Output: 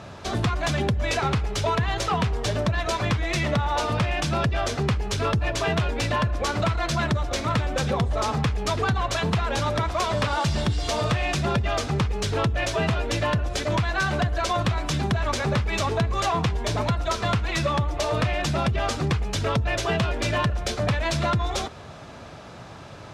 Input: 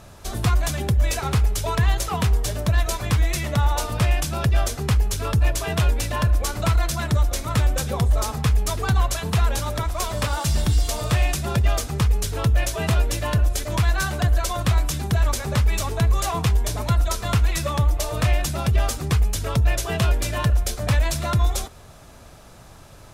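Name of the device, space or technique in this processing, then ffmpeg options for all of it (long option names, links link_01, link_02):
AM radio: -af "highpass=100,lowpass=4300,acompressor=threshold=-25dB:ratio=6,asoftclip=type=tanh:threshold=-21dB,volume=6.5dB"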